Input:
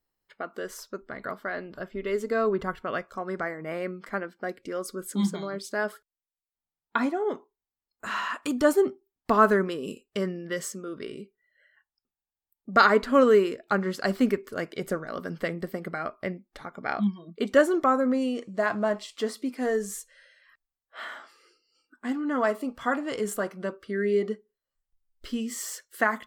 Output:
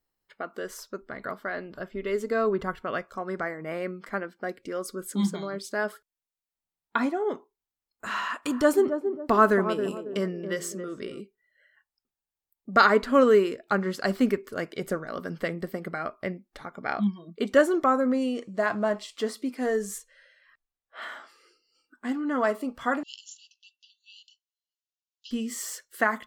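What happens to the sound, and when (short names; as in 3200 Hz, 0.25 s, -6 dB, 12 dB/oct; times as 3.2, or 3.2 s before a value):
8.18–11.2 narrowing echo 0.275 s, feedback 40%, band-pass 400 Hz, level -7 dB
19.98–21.02 high shelf 5900 Hz -10.5 dB
23.03–25.31 brick-wall FIR band-pass 2600–7300 Hz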